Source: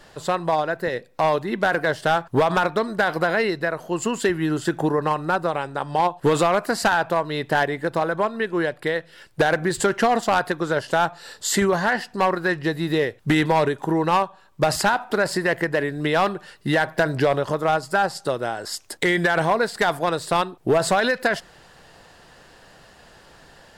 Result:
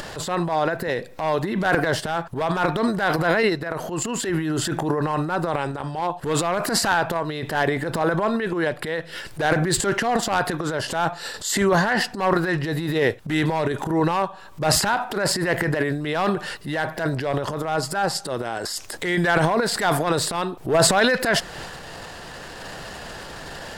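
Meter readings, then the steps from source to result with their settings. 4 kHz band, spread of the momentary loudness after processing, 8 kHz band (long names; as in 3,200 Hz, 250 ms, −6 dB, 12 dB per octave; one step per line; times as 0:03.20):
+3.0 dB, 10 LU, +5.0 dB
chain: sample-and-hold tremolo
transient designer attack −10 dB, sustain +10 dB
upward compression, threshold −25 dBFS
level +2 dB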